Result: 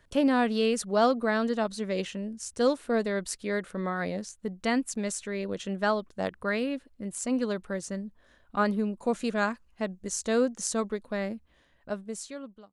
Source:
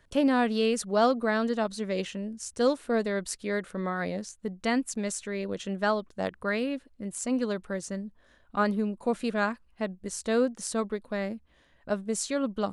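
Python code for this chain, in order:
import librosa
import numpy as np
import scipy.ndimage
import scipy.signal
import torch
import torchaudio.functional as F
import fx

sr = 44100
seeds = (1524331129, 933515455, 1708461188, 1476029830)

y = fx.fade_out_tail(x, sr, length_s=1.32)
y = fx.peak_eq(y, sr, hz=6600.0, db=7.5, octaves=0.44, at=(8.98, 11.05))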